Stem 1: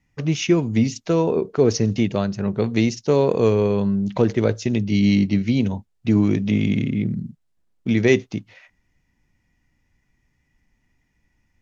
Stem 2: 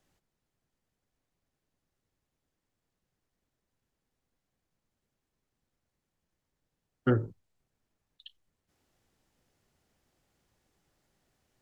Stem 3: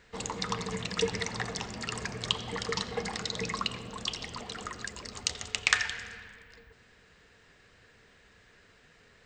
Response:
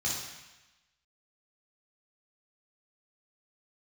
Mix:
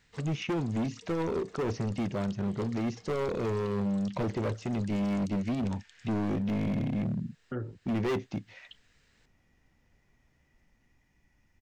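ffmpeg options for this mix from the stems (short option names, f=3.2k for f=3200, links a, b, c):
-filter_complex "[0:a]bandreject=f=460:w=12,acrossover=split=2700[a][b];[b]acompressor=threshold=-47dB:ratio=4:attack=1:release=60[c];[a][c]amix=inputs=2:normalize=0,asoftclip=type=hard:threshold=-21dB,volume=-2dB[d];[1:a]dynaudnorm=f=500:g=9:m=15dB,lowpass=3.2k,adelay=450,volume=-10.5dB[e];[2:a]highshelf=f=2k:g=11.5,acompressor=threshold=-34dB:ratio=6,volume=-14.5dB[f];[d][e][f]amix=inputs=3:normalize=0,alimiter=level_in=2.5dB:limit=-24dB:level=0:latency=1:release=279,volume=-2.5dB"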